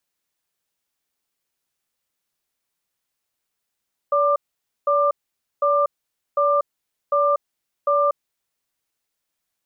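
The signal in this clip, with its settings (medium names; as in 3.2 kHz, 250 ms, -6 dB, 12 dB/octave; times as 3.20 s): cadence 575 Hz, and 1.19 kHz, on 0.24 s, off 0.51 s, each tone -18 dBFS 4.09 s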